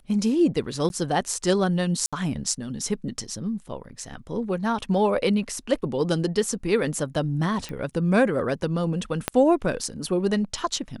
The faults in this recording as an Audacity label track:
0.890000	0.900000	drop-out
2.060000	2.130000	drop-out 66 ms
7.690000	7.690000	click −20 dBFS
9.280000	9.280000	click −6 dBFS

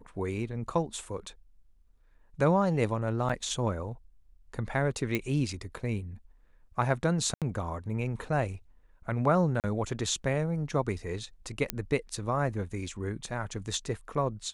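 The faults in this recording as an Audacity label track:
3.290000	3.300000	drop-out 5.7 ms
5.150000	5.150000	click −15 dBFS
7.340000	7.420000	drop-out 77 ms
9.600000	9.640000	drop-out 38 ms
11.700000	11.700000	click −10 dBFS

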